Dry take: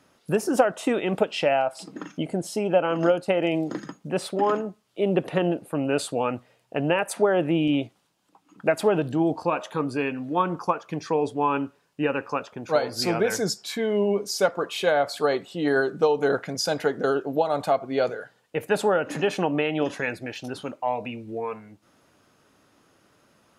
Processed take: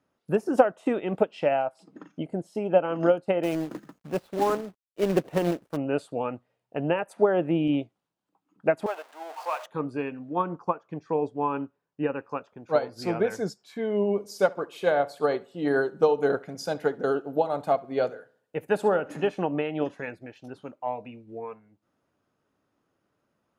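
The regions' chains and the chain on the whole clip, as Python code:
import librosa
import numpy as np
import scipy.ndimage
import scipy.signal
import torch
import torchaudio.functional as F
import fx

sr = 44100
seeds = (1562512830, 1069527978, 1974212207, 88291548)

y = fx.chain(x, sr, fx.dead_time(dead_ms=0.065),
    fx.quant_companded(bits=4), at=(3.43, 5.77))
y = fx.chain(y, sr, fx.zero_step(step_db=-26.0),
    fx.highpass(hz=650.0, slope=24), at=(8.86, 9.66))
y = fx.chain(y, sr, fx.lowpass(hz=8400.0, slope=24),
    fx.peak_eq(hz=4500.0, db=-4.0, octaves=2.0), at=(10.19, 12.19))
y = fx.chain(y, sr, fx.high_shelf(hz=7900.0, db=9.5),
    fx.echo_filtered(ms=69, feedback_pct=46, hz=4700.0, wet_db=-15), at=(14.11, 19.3))
y = fx.high_shelf(y, sr, hz=2200.0, db=-9.5)
y = fx.upward_expand(y, sr, threshold_db=-44.0, expansion=1.5)
y = y * librosa.db_to_amplitude(2.0)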